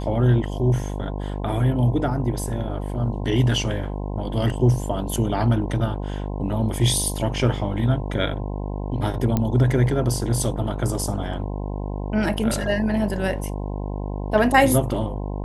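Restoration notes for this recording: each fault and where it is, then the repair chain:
buzz 50 Hz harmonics 21 -28 dBFS
9.37 s: pop -9 dBFS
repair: de-click; de-hum 50 Hz, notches 21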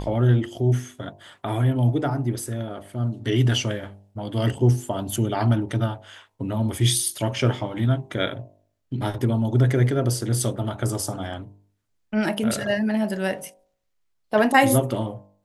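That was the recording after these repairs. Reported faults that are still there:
nothing left

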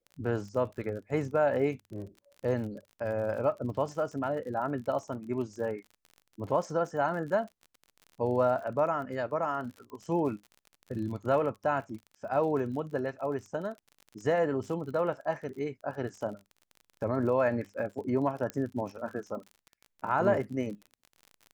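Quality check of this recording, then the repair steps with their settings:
crackle 43 per s -40 dBFS
18.50 s: pop -20 dBFS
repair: de-click

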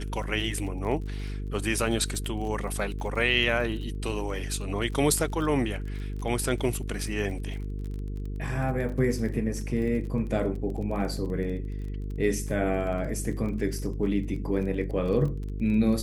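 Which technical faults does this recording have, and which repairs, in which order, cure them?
buzz 50 Hz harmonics 9 -33 dBFS
crackle 25 per s -35 dBFS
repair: de-click; de-hum 50 Hz, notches 9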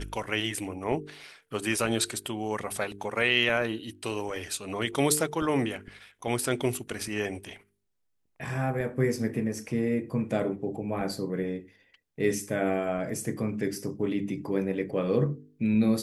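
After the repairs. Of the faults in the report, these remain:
nothing left

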